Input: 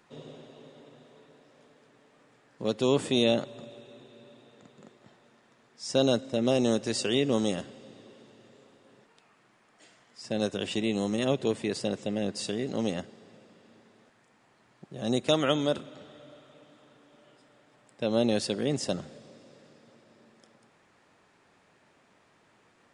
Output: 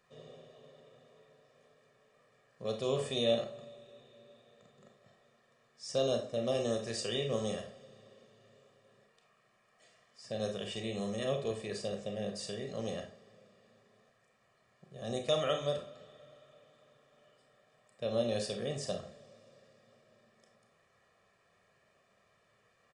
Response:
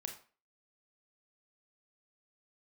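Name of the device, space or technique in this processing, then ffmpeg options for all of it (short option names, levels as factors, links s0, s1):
microphone above a desk: -filter_complex "[0:a]aecho=1:1:1.7:0.74[s0];[1:a]atrim=start_sample=2205[s1];[s0][s1]afir=irnorm=-1:irlink=0,volume=0.501"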